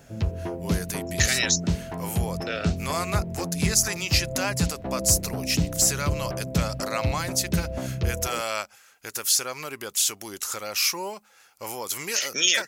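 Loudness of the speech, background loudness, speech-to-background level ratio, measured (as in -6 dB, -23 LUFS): -26.0 LUFS, -30.0 LUFS, 4.0 dB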